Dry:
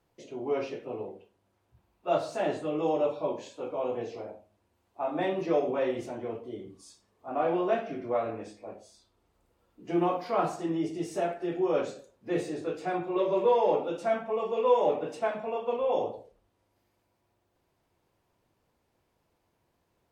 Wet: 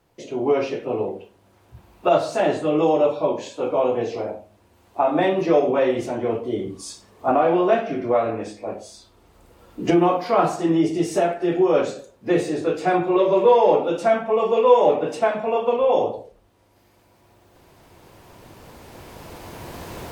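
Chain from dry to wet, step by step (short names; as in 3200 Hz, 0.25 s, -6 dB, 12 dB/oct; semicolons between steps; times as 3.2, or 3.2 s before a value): recorder AGC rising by 7.8 dB/s; gain +9 dB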